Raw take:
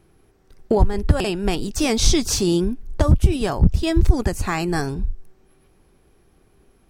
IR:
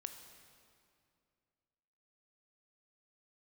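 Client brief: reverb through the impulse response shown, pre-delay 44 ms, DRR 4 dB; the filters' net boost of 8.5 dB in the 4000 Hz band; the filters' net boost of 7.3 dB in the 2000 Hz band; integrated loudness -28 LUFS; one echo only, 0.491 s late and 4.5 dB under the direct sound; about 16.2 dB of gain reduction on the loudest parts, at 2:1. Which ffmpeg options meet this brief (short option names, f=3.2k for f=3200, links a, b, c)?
-filter_complex "[0:a]equalizer=f=2k:t=o:g=6.5,equalizer=f=4k:t=o:g=9,acompressor=threshold=-39dB:ratio=2,aecho=1:1:491:0.596,asplit=2[a][b];[1:a]atrim=start_sample=2205,adelay=44[c];[b][c]afir=irnorm=-1:irlink=0,volume=-0.5dB[d];[a][d]amix=inputs=2:normalize=0,volume=2dB"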